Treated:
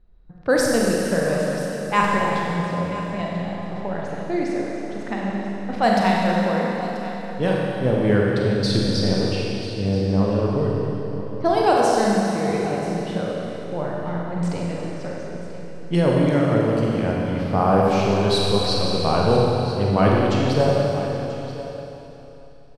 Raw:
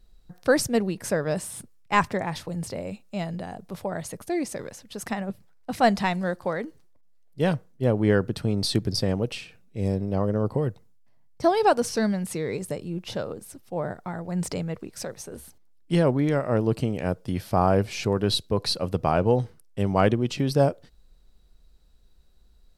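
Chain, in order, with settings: low-pass opened by the level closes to 1700 Hz, open at -17 dBFS; echo 0.985 s -15 dB; Schroeder reverb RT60 3.2 s, combs from 31 ms, DRR -3.5 dB

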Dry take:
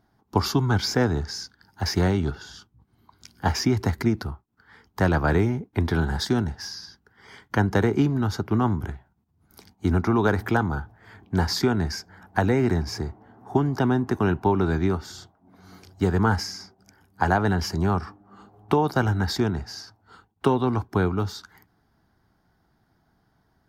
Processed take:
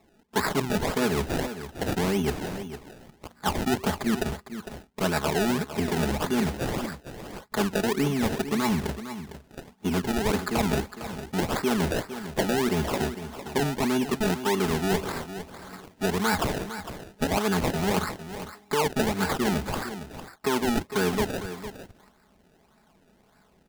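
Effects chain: low shelf 230 Hz -8.5 dB; comb 4.7 ms, depth 97%; reverse; compressor 6:1, threshold -28 dBFS, peak gain reduction 14 dB; reverse; decimation with a swept rate 28×, swing 100% 1.7 Hz; echo 0.455 s -11.5 dB; gain +5.5 dB

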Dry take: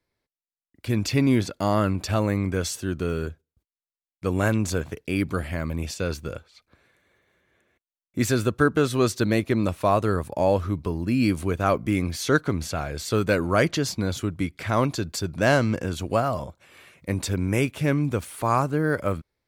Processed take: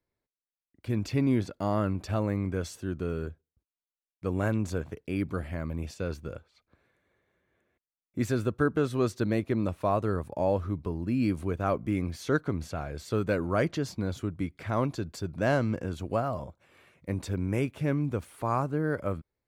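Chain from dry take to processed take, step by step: high shelf 2000 Hz -9 dB; gain -5 dB

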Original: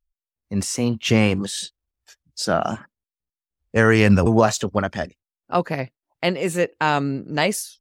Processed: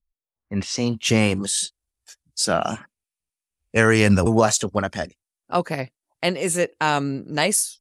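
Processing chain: tone controls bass -1 dB, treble +4 dB; low-pass sweep 230 Hz -> 10000 Hz, 0.03–0.94; 2.44–3.85 bell 2500 Hz +9 dB 0.41 oct; gain -1 dB

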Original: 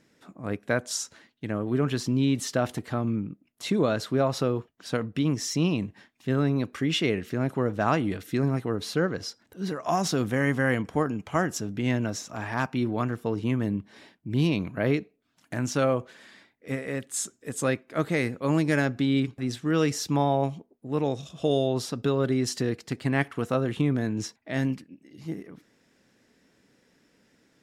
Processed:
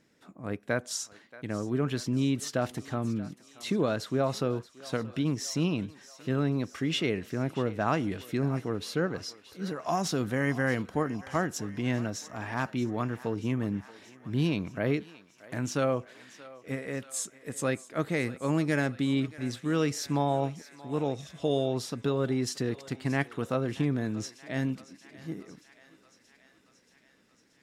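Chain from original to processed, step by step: thinning echo 0.629 s, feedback 71%, high-pass 590 Hz, level -17 dB; gain -3.5 dB

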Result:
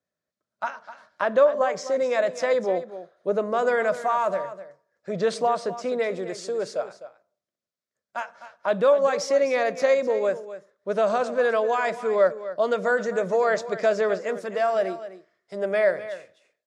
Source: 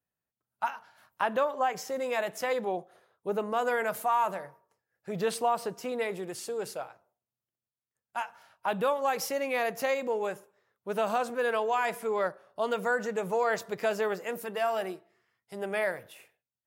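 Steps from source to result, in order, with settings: speaker cabinet 100–7000 Hz, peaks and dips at 120 Hz -9 dB, 590 Hz +9 dB, 840 Hz -9 dB, 2800 Hz -8 dB; on a send: echo 0.254 s -13.5 dB; on the sum: gain +5 dB

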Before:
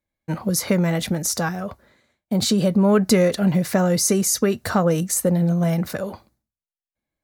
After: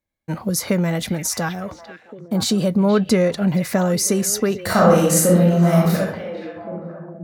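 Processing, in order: 2.89–3.48 high shelf 8200 Hz -10.5 dB; 4.62–5.99 reverb throw, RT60 0.83 s, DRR -6 dB; delay with a stepping band-pass 0.473 s, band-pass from 2500 Hz, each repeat -1.4 oct, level -7 dB

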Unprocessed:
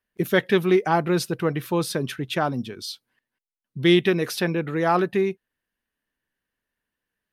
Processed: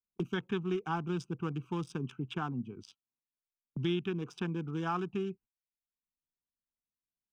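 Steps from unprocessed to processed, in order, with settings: Wiener smoothing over 25 samples; gate -43 dBFS, range -27 dB; high shelf 9000 Hz -9 dB; fixed phaser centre 2900 Hz, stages 8; three-band squash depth 70%; gain -8.5 dB

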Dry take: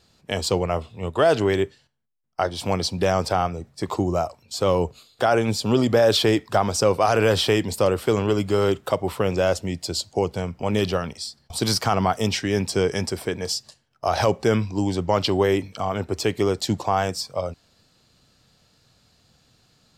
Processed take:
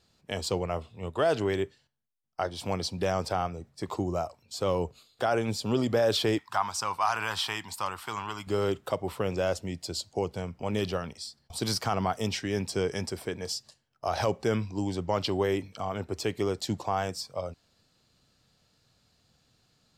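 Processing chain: 6.38–8.47 resonant low shelf 690 Hz -11 dB, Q 3; gain -7.5 dB

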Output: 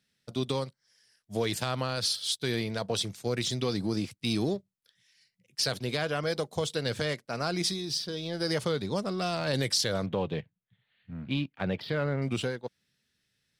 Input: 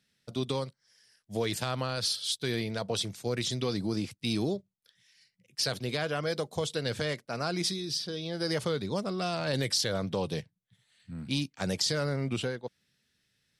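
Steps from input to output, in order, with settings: 10.06–12.22 inverse Chebyshev low-pass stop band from 6300 Hz, stop band 40 dB; in parallel at -6 dB: crossover distortion -45 dBFS; on the sum: gain -2 dB

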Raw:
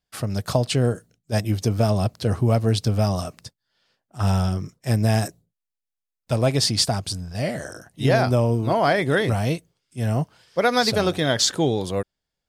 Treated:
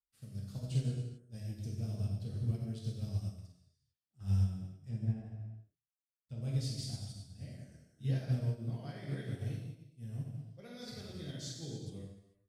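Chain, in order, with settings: 4.42–6.42 treble ducked by the level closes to 1400 Hz, closed at -17 dBFS; passive tone stack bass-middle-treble 10-0-1; non-linear reverb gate 0.47 s falling, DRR -5.5 dB; upward expander 1.5:1, over -46 dBFS; gain -3.5 dB

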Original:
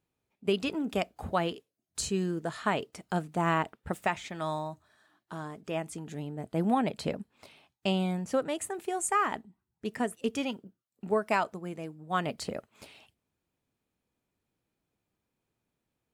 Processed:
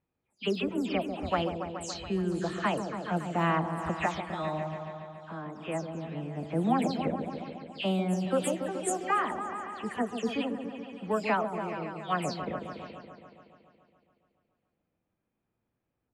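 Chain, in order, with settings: spectral delay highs early, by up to 0.172 s; repeats that get brighter 0.141 s, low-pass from 750 Hz, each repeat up 1 oct, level -6 dB; low-pass opened by the level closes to 2300 Hz, open at -24.5 dBFS

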